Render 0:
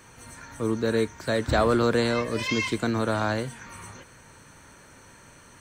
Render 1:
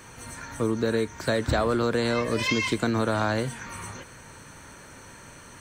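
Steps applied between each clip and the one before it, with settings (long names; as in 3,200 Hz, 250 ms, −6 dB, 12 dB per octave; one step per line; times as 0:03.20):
downward compressor 6 to 1, threshold −25 dBFS, peak gain reduction 8 dB
level +4.5 dB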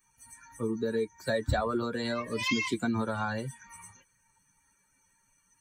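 spectral dynamics exaggerated over time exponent 2
notch comb filter 160 Hz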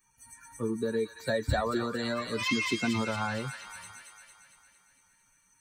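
delay with a high-pass on its return 227 ms, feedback 60%, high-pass 1,800 Hz, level −3.5 dB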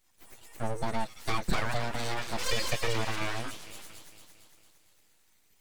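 full-wave rectification
level +2 dB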